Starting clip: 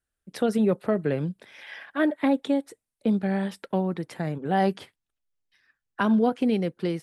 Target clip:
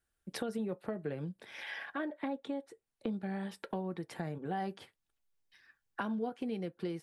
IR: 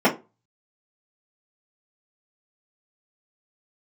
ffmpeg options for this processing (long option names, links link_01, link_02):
-filter_complex "[0:a]asettb=1/sr,asplit=3[link_01][link_02][link_03];[link_01]atrim=end=1.914[link_04];[link_02]atrim=start=1.91:end=3.13,asetpts=PTS-STARTPTS,afade=type=in:duration=0.004:curve=qsin,afade=type=out:start_time=1.216:duration=0.004:curve=qsin,highshelf=frequency=7900:gain=-11[link_05];[link_03]atrim=start=3.126[link_06];[link_04][link_05]acrossfade=duration=0.004:curve1=hsin:curve2=qsin[link_07];[link_07][link_06]acrossfade=duration=0.004:curve1=qsin:curve2=hsin,acompressor=threshold=-41dB:ratio=3,asplit=2[link_08][link_09];[link_09]equalizer=frequency=190:width=0.94:gain=-14[link_10];[1:a]atrim=start_sample=2205,asetrate=74970,aresample=44100[link_11];[link_10][link_11]afir=irnorm=-1:irlink=0,volume=-26dB[link_12];[link_08][link_12]amix=inputs=2:normalize=0,volume=1dB"